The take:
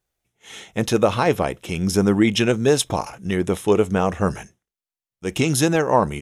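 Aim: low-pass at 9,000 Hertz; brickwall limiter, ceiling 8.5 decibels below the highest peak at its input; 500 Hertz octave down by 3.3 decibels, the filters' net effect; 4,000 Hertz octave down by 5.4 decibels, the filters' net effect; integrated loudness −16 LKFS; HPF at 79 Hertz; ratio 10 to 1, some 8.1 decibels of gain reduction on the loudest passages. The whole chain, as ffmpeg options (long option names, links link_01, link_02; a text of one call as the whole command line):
ffmpeg -i in.wav -af "highpass=79,lowpass=9000,equalizer=frequency=500:width_type=o:gain=-4,equalizer=frequency=4000:width_type=o:gain=-7.5,acompressor=threshold=-22dB:ratio=10,volume=15dB,alimiter=limit=-4dB:level=0:latency=1" out.wav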